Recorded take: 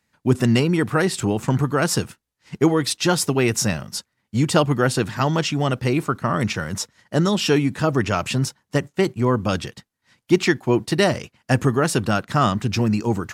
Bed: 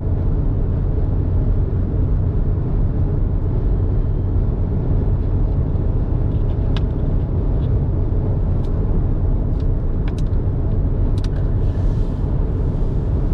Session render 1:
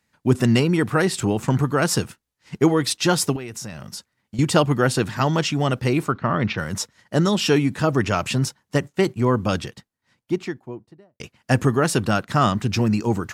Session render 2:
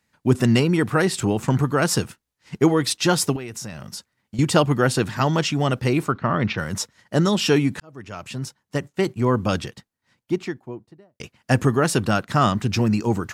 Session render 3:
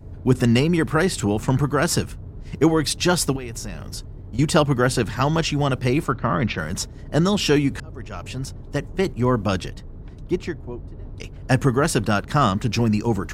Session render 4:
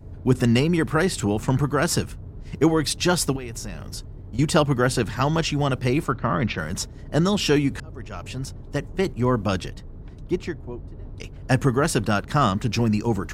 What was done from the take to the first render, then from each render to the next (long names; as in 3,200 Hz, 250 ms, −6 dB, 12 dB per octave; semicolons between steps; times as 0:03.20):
0:03.36–0:04.39: downward compressor, threshold −30 dBFS; 0:06.12–0:06.58: low-pass filter 4,100 Hz 24 dB per octave; 0:09.39–0:11.20: fade out and dull
0:07.80–0:09.38: fade in
mix in bed −18.5 dB
level −1.5 dB